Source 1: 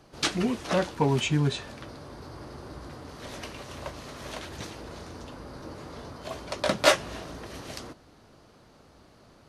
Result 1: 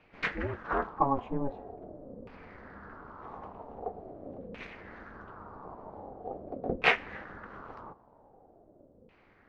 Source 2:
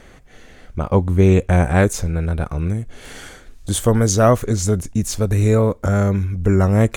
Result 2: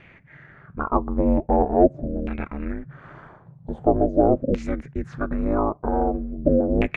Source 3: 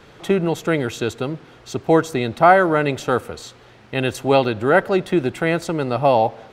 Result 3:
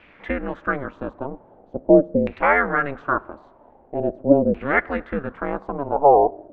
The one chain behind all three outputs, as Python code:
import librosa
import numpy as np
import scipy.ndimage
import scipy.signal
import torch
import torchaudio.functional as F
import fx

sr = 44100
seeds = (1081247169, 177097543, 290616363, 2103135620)

y = fx.filter_lfo_lowpass(x, sr, shape='saw_down', hz=0.44, low_hz=350.0, high_hz=2500.0, q=5.3)
y = y * np.sin(2.0 * np.pi * 140.0 * np.arange(len(y)) / sr)
y = F.gain(torch.from_numpy(y), -5.5).numpy()